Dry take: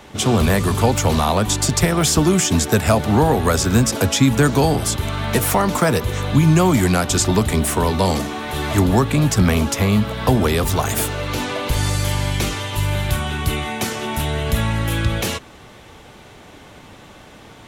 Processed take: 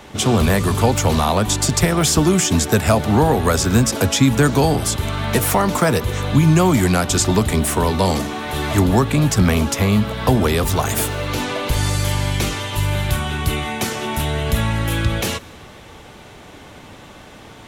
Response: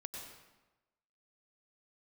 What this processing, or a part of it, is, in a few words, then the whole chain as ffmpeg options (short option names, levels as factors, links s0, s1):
compressed reverb return: -filter_complex "[0:a]asplit=2[s0][s1];[1:a]atrim=start_sample=2205[s2];[s1][s2]afir=irnorm=-1:irlink=0,acompressor=threshold=0.0282:ratio=6,volume=0.422[s3];[s0][s3]amix=inputs=2:normalize=0"